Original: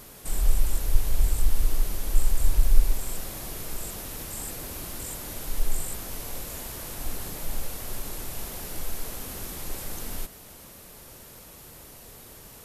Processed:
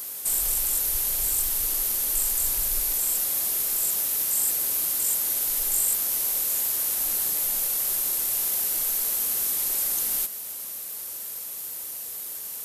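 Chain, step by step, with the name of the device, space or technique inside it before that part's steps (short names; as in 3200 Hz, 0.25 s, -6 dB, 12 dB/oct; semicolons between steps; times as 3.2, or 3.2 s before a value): turntable without a phono preamp (RIAA curve recording; white noise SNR 37 dB)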